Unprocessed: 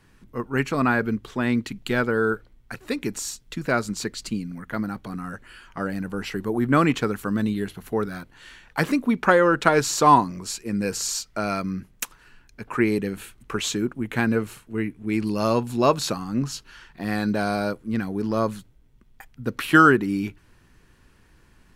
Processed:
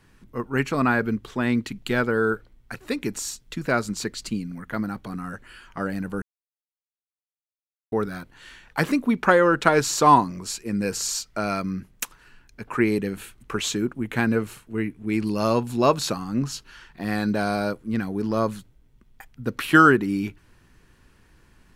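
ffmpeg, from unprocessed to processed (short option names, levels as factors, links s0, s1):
-filter_complex "[0:a]asplit=3[s0][s1][s2];[s0]atrim=end=6.22,asetpts=PTS-STARTPTS,afade=t=out:st=6.216:d=0.004:c=hsin[s3];[s1]atrim=start=6.22:end=7.92,asetpts=PTS-STARTPTS,volume=0[s4];[s2]atrim=start=7.92,asetpts=PTS-STARTPTS,afade=t=in:d=0.004:c=hsin[s5];[s3][s4][s5]concat=n=3:v=0:a=1"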